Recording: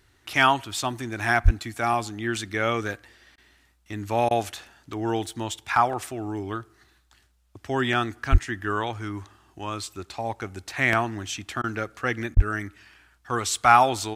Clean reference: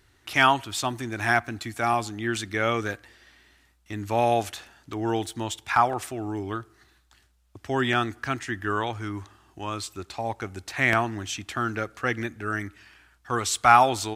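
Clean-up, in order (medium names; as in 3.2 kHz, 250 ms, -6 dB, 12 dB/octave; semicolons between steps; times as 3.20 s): 1.44–1.56 s: high-pass 140 Hz 24 dB/octave; 8.31–8.43 s: high-pass 140 Hz 24 dB/octave; 12.35–12.47 s: high-pass 140 Hz 24 dB/octave; interpolate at 3.36/4.29/11.62/12.35 s, 17 ms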